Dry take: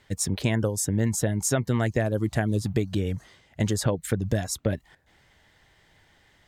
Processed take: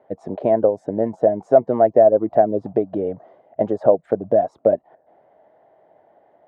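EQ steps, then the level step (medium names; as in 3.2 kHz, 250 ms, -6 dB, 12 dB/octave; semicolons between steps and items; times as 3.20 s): high-pass 310 Hz 12 dB/octave; resonant low-pass 660 Hz, resonance Q 4.9; +6.0 dB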